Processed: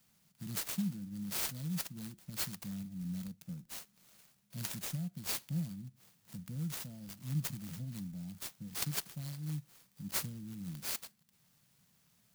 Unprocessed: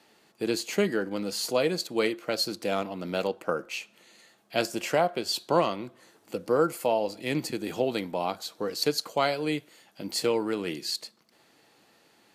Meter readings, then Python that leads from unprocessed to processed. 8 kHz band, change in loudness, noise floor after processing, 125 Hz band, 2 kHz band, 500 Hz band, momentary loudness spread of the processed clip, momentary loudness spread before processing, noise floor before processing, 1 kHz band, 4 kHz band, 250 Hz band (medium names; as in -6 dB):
-4.0 dB, -11.0 dB, -72 dBFS, +1.0 dB, -14.5 dB, -31.5 dB, 11 LU, 9 LU, -63 dBFS, -22.5 dB, -13.0 dB, -9.0 dB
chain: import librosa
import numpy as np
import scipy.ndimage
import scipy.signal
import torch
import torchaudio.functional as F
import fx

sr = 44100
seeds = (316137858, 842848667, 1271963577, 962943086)

y = scipy.signal.sosfilt(scipy.signal.ellip(3, 1.0, 40, [170.0, 5900.0], 'bandstop', fs=sr, output='sos'), x)
y = fx.clock_jitter(y, sr, seeds[0], jitter_ms=0.048)
y = y * 10.0 ** (2.0 / 20.0)